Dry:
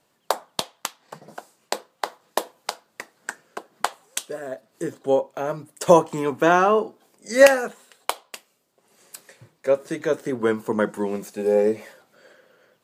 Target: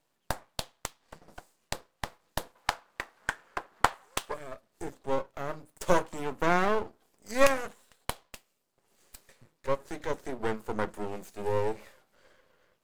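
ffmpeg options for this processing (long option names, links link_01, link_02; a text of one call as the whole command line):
ffmpeg -i in.wav -filter_complex "[0:a]aeval=exprs='max(val(0),0)':channel_layout=same,asettb=1/sr,asplit=3[link_01][link_02][link_03];[link_01]atrim=end=2.554[link_04];[link_02]atrim=start=2.55:end=4.34,asetpts=PTS-STARTPTS,afade=type=in:duration=0.004:curve=qsin,afade=type=out:start_time=1.786:duration=0.004:curve=qsin,equalizer=frequency=1200:width=0.46:gain=13[link_05];[link_03]atrim=start=4.336[link_06];[link_04][link_05]acrossfade=duration=0.004:curve1=hsin:curve2=qsin[link_07];[link_07][link_06]acrossfade=duration=0.004:curve1=qsin:curve2=hsin,volume=-5.5dB" out.wav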